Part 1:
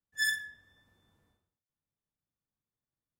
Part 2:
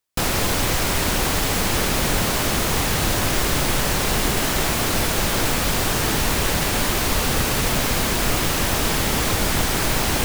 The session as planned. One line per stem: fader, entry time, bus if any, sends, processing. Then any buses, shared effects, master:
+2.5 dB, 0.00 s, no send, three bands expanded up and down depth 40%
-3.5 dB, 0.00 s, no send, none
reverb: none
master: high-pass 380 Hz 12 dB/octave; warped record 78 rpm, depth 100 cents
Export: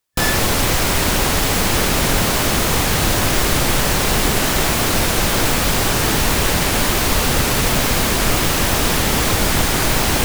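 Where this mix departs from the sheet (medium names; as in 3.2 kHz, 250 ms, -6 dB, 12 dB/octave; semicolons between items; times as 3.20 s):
stem 2 -3.5 dB -> +4.0 dB; master: missing high-pass 380 Hz 12 dB/octave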